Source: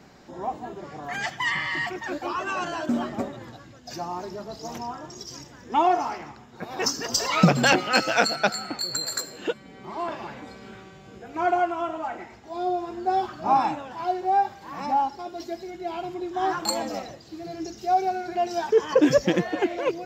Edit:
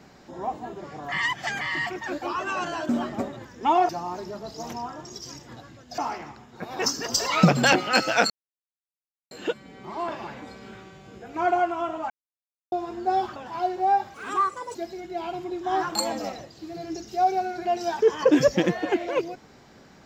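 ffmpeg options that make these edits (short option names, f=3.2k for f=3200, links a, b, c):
-filter_complex "[0:a]asplit=14[a][b][c][d][e][f][g][h][i][j][k][l][m][n];[a]atrim=end=1.122[o];[b]atrim=start=1.118:end=1.612,asetpts=PTS-STARTPTS,areverse[p];[c]atrim=start=1.608:end=3.452[q];[d]atrim=start=5.538:end=5.982[r];[e]atrim=start=3.938:end=5.542[s];[f]atrim=start=3.448:end=3.942[t];[g]atrim=start=5.978:end=8.3,asetpts=PTS-STARTPTS,afade=t=out:st=2.318:d=0.004:c=hsin[u];[h]atrim=start=8.3:end=9.31,asetpts=PTS-STARTPTS,volume=0[v];[i]atrim=start=9.31:end=12.1,asetpts=PTS-STARTPTS,afade=t=in:d=0.004:c=hsin,afade=t=out:st=2.786:d=0.004:c=hsin[w];[j]atrim=start=12.1:end=12.72,asetpts=PTS-STARTPTS,volume=0[x];[k]atrim=start=12.72:end=13.362,asetpts=PTS-STARTPTS,afade=t=in:d=0.004:c=hsin[y];[l]atrim=start=13.808:end=14.594[z];[m]atrim=start=14.59:end=15.45,asetpts=PTS-STARTPTS,asetrate=62181,aresample=44100[aa];[n]atrim=start=15.446[ab];[o][p]acrossfade=d=0.004:c1=hsin:c2=hsin[ac];[ac][q]acrossfade=d=0.004:c1=hsin:c2=hsin[ad];[ad][r]acrossfade=d=0.004:c1=hsin:c2=hsin[ae];[ae][s]acrossfade=d=0.004:c1=hsin:c2=hsin[af];[af][t]acrossfade=d=0.004:c1=hsin:c2=hsin[ag];[u][v][w][x][y]concat=n=5:v=0:a=1[ah];[ag][ah]acrossfade=d=0.004:c1=hsin:c2=hsin[ai];[ai][z]acrossfade=d=0.004:c1=hsin:c2=hsin[aj];[aj][aa]acrossfade=d=0.004:c1=hsin:c2=hsin[ak];[ak][ab]acrossfade=d=0.004:c1=hsin:c2=hsin"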